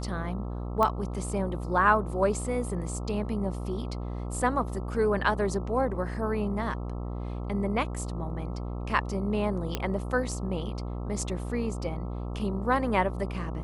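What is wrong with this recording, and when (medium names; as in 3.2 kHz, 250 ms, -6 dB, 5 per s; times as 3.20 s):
buzz 60 Hz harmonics 22 -34 dBFS
0.83 s: pop -14 dBFS
9.75 s: pop -13 dBFS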